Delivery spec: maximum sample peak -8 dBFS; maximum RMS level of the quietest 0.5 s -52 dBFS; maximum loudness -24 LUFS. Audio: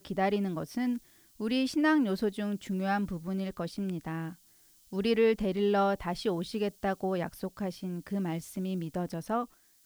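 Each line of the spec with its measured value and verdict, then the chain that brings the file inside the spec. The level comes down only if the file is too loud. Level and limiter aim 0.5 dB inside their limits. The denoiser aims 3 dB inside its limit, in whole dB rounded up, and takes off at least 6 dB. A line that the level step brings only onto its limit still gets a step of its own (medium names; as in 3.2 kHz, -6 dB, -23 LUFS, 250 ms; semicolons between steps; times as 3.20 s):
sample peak -15.0 dBFS: pass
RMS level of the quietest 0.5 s -62 dBFS: pass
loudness -31.5 LUFS: pass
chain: none needed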